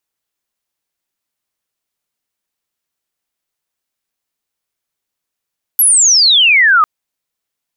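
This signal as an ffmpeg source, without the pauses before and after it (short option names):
-f lavfi -i "aevalsrc='pow(10,(-6+0.5*t/1.05)/20)*sin(2*PI*12000*1.05/log(1200/12000)*(exp(log(1200/12000)*t/1.05)-1))':d=1.05:s=44100"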